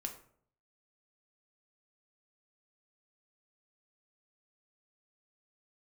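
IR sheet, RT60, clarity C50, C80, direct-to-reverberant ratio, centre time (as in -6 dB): 0.60 s, 10.5 dB, 13.5 dB, 3.0 dB, 14 ms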